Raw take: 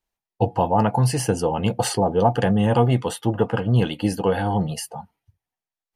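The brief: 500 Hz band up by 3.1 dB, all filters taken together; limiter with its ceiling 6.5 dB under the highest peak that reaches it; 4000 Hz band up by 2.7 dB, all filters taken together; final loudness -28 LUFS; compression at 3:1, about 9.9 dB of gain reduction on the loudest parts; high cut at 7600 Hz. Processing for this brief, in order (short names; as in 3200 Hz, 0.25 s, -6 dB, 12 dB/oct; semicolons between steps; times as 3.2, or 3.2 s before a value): LPF 7600 Hz; bell 500 Hz +3.5 dB; bell 4000 Hz +4 dB; compressor 3:1, threshold -25 dBFS; gain +2 dB; limiter -17 dBFS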